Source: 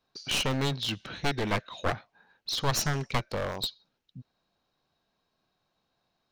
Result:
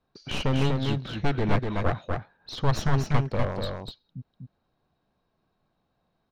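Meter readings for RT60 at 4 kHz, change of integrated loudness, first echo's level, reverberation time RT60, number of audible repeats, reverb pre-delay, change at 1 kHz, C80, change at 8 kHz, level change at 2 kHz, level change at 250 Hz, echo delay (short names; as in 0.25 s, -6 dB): none, +2.5 dB, -4.0 dB, none, 1, none, +2.0 dB, none, -10.0 dB, -1.0 dB, +6.0 dB, 0.246 s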